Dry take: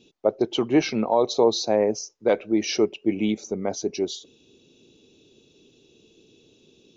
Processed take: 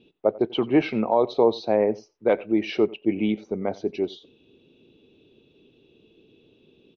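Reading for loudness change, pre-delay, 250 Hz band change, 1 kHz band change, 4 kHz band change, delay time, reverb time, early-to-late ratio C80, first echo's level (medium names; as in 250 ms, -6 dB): -0.5 dB, no reverb, 0.0 dB, 0.0 dB, -6.0 dB, 90 ms, no reverb, no reverb, -21.5 dB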